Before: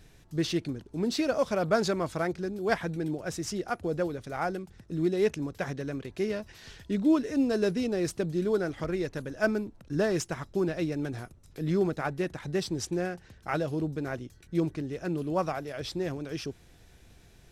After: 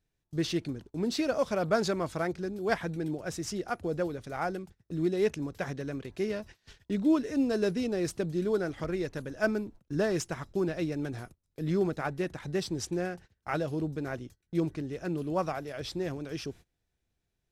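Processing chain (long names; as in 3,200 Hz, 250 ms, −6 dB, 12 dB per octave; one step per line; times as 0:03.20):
noise gate −46 dBFS, range −24 dB
level −1.5 dB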